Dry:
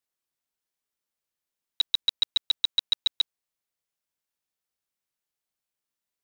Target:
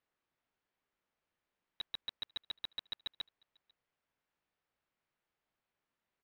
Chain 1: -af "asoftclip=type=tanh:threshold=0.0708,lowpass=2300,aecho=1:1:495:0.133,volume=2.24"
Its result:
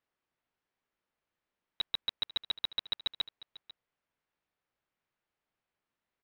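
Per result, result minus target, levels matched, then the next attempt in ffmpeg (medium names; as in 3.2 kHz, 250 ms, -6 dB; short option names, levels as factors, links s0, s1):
echo-to-direct +12 dB; saturation: distortion -5 dB
-af "asoftclip=type=tanh:threshold=0.0708,lowpass=2300,aecho=1:1:495:0.0335,volume=2.24"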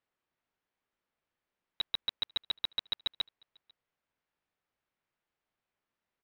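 saturation: distortion -5 dB
-af "asoftclip=type=tanh:threshold=0.0251,lowpass=2300,aecho=1:1:495:0.0335,volume=2.24"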